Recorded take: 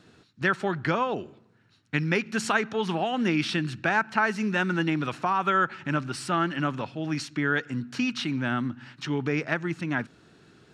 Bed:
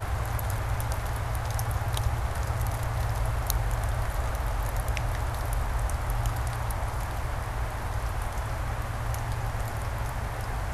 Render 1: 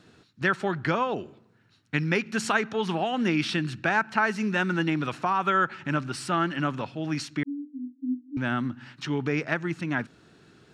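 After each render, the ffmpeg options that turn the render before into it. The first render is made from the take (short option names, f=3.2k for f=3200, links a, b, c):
-filter_complex "[0:a]asettb=1/sr,asplit=3[a][b][c];[a]atrim=end=7.434[d];[b]atrim=start=7.43:end=8.37,asetpts=PTS-STARTPTS,afade=t=in:d=0.004:c=qsin,afade=t=out:st=0.936:d=0.004:c=qsin,asuperpass=centerf=270:order=20:qfactor=5.6[e];[c]atrim=start=8.366[f];[d][e]acrossfade=d=0.004:c1=hsin:c2=qsin[g];[g][f]acrossfade=d=0.004:c1=qsin:c2=hsin"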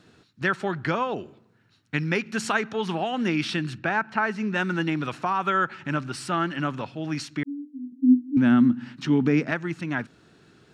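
-filter_complex "[0:a]asplit=3[a][b][c];[a]afade=t=out:st=3.77:d=0.02[d];[b]lowpass=f=2.8k:p=1,afade=t=in:st=3.77:d=0.02,afade=t=out:st=4.54:d=0.02[e];[c]afade=t=in:st=4.54:d=0.02[f];[d][e][f]amix=inputs=3:normalize=0,asettb=1/sr,asplit=3[g][h][i];[g]atrim=end=7.924[j];[h]atrim=start=7.92:end=9.51,asetpts=PTS-STARTPTS,afade=t=in:d=0.004:c=qsin,afade=t=out:st=1.586:d=0.004:c=qsin,equalizer=f=230:w=1.5:g=14[k];[i]atrim=start=9.506[l];[j][k]acrossfade=d=0.004:c1=hsin:c2=qsin[m];[m][l]acrossfade=d=0.004:c1=qsin:c2=hsin"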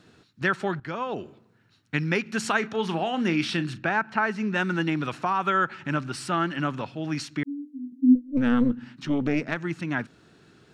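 -filter_complex "[0:a]asettb=1/sr,asplit=3[a][b][c];[a]atrim=end=2.584[d];[b]atrim=start=2.58:end=3.86,asetpts=PTS-STARTPTS,afade=t=in:d=0.004:c=qsin,afade=t=out:st=1.276:d=0.004:c=qsin,asplit=2[e][f];[f]adelay=36,volume=-13dB[g];[e][g]amix=inputs=2:normalize=0,atrim=end_sample=56448[h];[c]atrim=start=3.856[i];[d][h]acrossfade=d=0.004:c1=hsin:c2=qsin[j];[j][i]acrossfade=d=0.004:c1=qsin:c2=hsin,asettb=1/sr,asplit=3[k][l][m];[k]atrim=end=8.154[n];[l]atrim=start=8.15:end=9.57,asetpts=PTS-STARTPTS,afade=t=in:d=0.004:c=qsin,afade=t=out:st=1.416:d=0.004:c=qsin,aeval=exprs='(tanh(3.98*val(0)+0.7)-tanh(0.7))/3.98':c=same[o];[m]atrim=start=9.566[p];[n][o]acrossfade=d=0.004:c1=hsin:c2=qsin[q];[q][p]acrossfade=d=0.004:c1=qsin:c2=hsin,asplit=2[r][s];[r]atrim=end=0.8,asetpts=PTS-STARTPTS,afade=t=out:st=0.796:d=0.004:c=hsin:silence=0.188365[t];[s]atrim=start=0.8,asetpts=PTS-STARTPTS,afade=t=in:d=0.42:silence=0.188365[u];[t][u]concat=n=2:v=0:a=1"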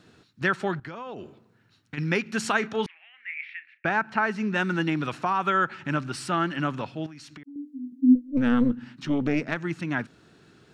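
-filter_complex "[0:a]asplit=3[a][b][c];[a]afade=t=out:st=0.86:d=0.02[d];[b]acompressor=threshold=-33dB:ratio=6:attack=3.2:release=140:knee=1:detection=peak,afade=t=in:st=0.86:d=0.02,afade=t=out:st=1.97:d=0.02[e];[c]afade=t=in:st=1.97:d=0.02[f];[d][e][f]amix=inputs=3:normalize=0,asettb=1/sr,asplit=3[g][h][i];[g]atrim=end=2.864[j];[h]atrim=start=2.86:end=3.85,asetpts=PTS-STARTPTS,afade=t=in:d=0.004:c=qsin,afade=t=out:st=0.986:d=0.004:c=qsin,asuperpass=centerf=2100:order=4:qfactor=4[k];[i]atrim=start=3.846[l];[j][k]acrossfade=d=0.004:c1=hsin:c2=qsin[m];[m][l]acrossfade=d=0.004:c1=qsin:c2=hsin,asettb=1/sr,asplit=3[n][o][p];[n]atrim=end=7.064[q];[o]atrim=start=7.06:end=7.56,asetpts=PTS-STARTPTS,afade=t=in:d=0.004:c=qsin,afade=t=out:st=0.496:d=0.004:c=qsin,acompressor=threshold=-41dB:ratio=10:attack=3.2:release=140:knee=1:detection=peak[r];[p]atrim=start=7.556[s];[q][r]acrossfade=d=0.004:c1=hsin:c2=qsin[t];[t][s]acrossfade=d=0.004:c1=qsin:c2=hsin"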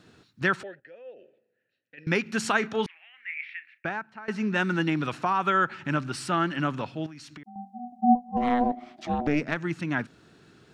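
-filter_complex "[0:a]asettb=1/sr,asplit=3[a][b][c];[a]atrim=end=0.634[d];[b]atrim=start=0.63:end=2.07,asetpts=PTS-STARTPTS,afade=t=in:d=0.004:c=qsin,afade=t=out:st=1.436:d=0.004:c=qsin,asplit=3[e][f][g];[e]bandpass=f=530:t=q:w=8,volume=0dB[h];[f]bandpass=f=1.84k:t=q:w=8,volume=-6dB[i];[g]bandpass=f=2.48k:t=q:w=8,volume=-9dB[j];[h][i][j]amix=inputs=3:normalize=0[k];[c]atrim=start=2.066[l];[d][k]acrossfade=d=0.004:c1=hsin:c2=qsin[m];[m][l]acrossfade=d=0.004:c1=qsin:c2=hsin,asettb=1/sr,asplit=3[n][o][p];[n]atrim=end=7.464[q];[o]atrim=start=7.46:end=9.27,asetpts=PTS-STARTPTS,afade=t=in:d=0.004:c=qsin,afade=t=out:st=1.806:d=0.004:c=qsin,aeval=exprs='val(0)*sin(2*PI*490*n/s)':c=same[r];[p]atrim=start=9.266[s];[q][r]acrossfade=d=0.004:c1=hsin:c2=qsin[t];[t][s]acrossfade=d=0.004:c1=qsin:c2=hsin,asplit=2[u][v];[u]atrim=end=4.28,asetpts=PTS-STARTPTS,afade=t=out:st=3.71:d=0.57:c=qua:silence=0.105925[w];[v]atrim=start=4.28,asetpts=PTS-STARTPTS,afade=t=in:d=0.004:c=hsin:silence=0.105925[x];[w][x]concat=n=2:v=0:a=1"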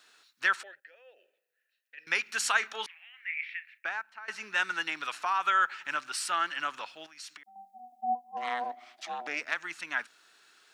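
-af "highpass=1.1k,highshelf=f=7.3k:g=8.5"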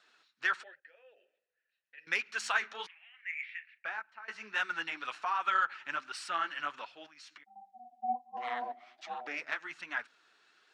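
-af "flanger=delay=1.3:depth=8.7:regen=-21:speed=1.3:shape=triangular,adynamicsmooth=sensitivity=1.5:basefreq=5.3k"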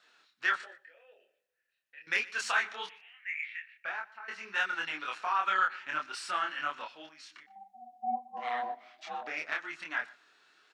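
-filter_complex "[0:a]asplit=2[a][b];[b]adelay=26,volume=-2dB[c];[a][c]amix=inputs=2:normalize=0,aecho=1:1:121|242:0.0841|0.0135"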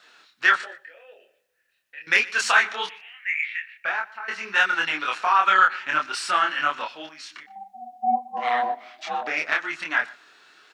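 -af "volume=11dB"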